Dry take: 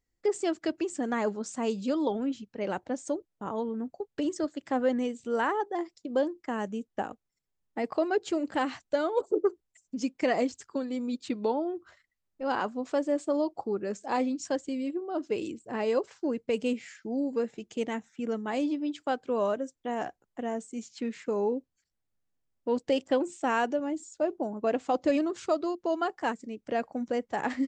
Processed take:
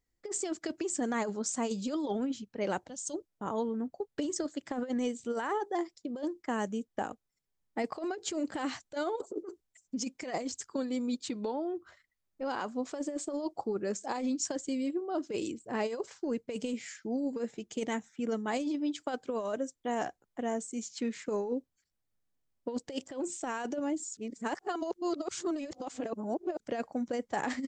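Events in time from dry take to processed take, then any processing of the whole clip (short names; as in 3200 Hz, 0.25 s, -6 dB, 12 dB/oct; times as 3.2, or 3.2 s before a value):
2.88–3.14 spectral gain 200–2600 Hz -14 dB
11.14–12.77 compressor 4:1, threshold -30 dBFS
24.17–26.6 reverse
whole clip: notch 2700 Hz, Q 24; dynamic EQ 6900 Hz, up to +8 dB, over -58 dBFS, Q 0.86; negative-ratio compressor -29 dBFS, ratio -0.5; gain -2.5 dB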